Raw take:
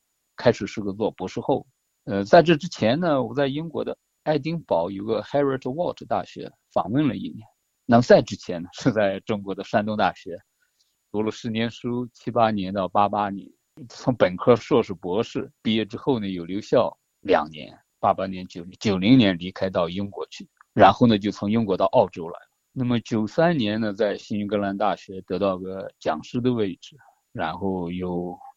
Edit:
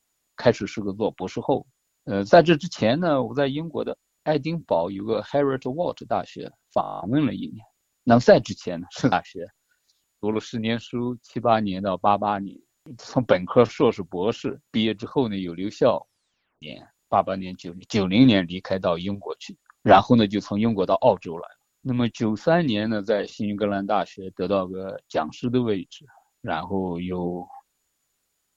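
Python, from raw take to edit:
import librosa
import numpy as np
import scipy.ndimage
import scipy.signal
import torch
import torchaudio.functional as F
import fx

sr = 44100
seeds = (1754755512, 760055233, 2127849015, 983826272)

y = fx.edit(x, sr, fx.stutter(start_s=6.81, slice_s=0.02, count=10),
    fx.cut(start_s=8.94, length_s=1.09),
    fx.tape_stop(start_s=16.87, length_s=0.66), tone=tone)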